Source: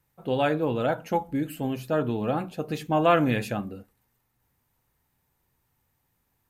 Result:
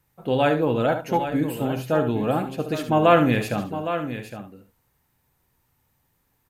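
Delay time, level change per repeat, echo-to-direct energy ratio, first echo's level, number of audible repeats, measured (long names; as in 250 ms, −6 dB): 70 ms, repeats not evenly spaced, −6.5 dB, −9.5 dB, 3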